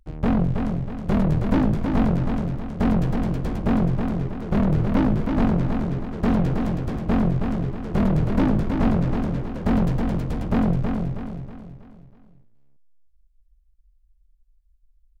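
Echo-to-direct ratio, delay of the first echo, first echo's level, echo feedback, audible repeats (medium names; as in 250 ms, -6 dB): -4.0 dB, 321 ms, -5.0 dB, 43%, 5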